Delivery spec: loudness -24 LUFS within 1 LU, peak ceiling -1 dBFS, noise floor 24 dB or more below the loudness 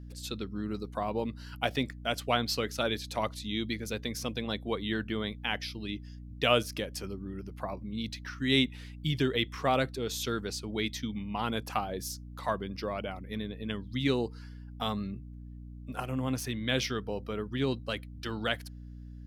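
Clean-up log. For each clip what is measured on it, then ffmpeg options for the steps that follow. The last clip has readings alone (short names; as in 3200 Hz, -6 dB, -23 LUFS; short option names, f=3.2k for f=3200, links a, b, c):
hum 60 Hz; harmonics up to 300 Hz; hum level -43 dBFS; loudness -33.0 LUFS; peak -10.5 dBFS; loudness target -24.0 LUFS
-> -af "bandreject=f=60:t=h:w=4,bandreject=f=120:t=h:w=4,bandreject=f=180:t=h:w=4,bandreject=f=240:t=h:w=4,bandreject=f=300:t=h:w=4"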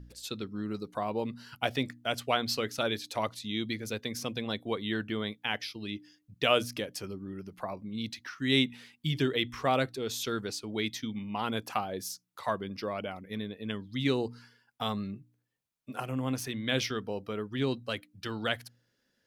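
hum none; loudness -33.5 LUFS; peak -11.0 dBFS; loudness target -24.0 LUFS
-> -af "volume=9.5dB"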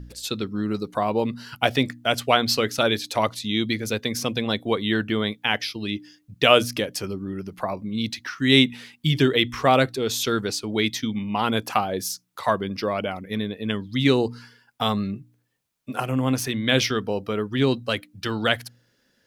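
loudness -24.0 LUFS; peak -1.5 dBFS; noise floor -67 dBFS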